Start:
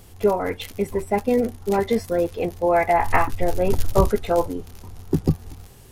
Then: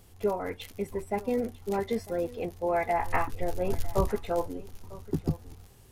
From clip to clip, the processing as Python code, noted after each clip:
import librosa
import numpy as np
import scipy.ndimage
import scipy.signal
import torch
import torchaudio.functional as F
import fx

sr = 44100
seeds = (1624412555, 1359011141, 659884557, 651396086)

y = x + 10.0 ** (-19.0 / 20.0) * np.pad(x, (int(950 * sr / 1000.0), 0))[:len(x)]
y = y * librosa.db_to_amplitude(-9.0)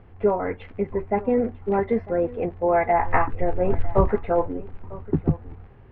y = scipy.signal.sosfilt(scipy.signal.butter(4, 2100.0, 'lowpass', fs=sr, output='sos'), x)
y = y * librosa.db_to_amplitude(7.5)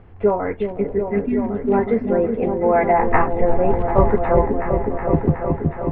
y = fx.spec_repair(x, sr, seeds[0], start_s=0.86, length_s=0.66, low_hz=430.0, high_hz=1500.0, source='both')
y = fx.air_absorb(y, sr, metres=55.0)
y = fx.echo_opening(y, sr, ms=369, hz=400, octaves=1, feedback_pct=70, wet_db=-3)
y = y * librosa.db_to_amplitude(3.5)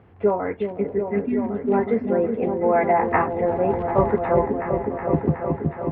y = scipy.signal.sosfilt(scipy.signal.butter(2, 100.0, 'highpass', fs=sr, output='sos'), x)
y = y * librosa.db_to_amplitude(-2.5)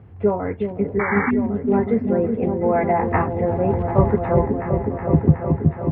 y = fx.spec_paint(x, sr, seeds[1], shape='noise', start_s=0.99, length_s=0.32, low_hz=750.0, high_hz=2300.0, level_db=-22.0)
y = fx.peak_eq(y, sr, hz=93.0, db=13.0, octaves=2.4)
y = y * librosa.db_to_amplitude(-2.0)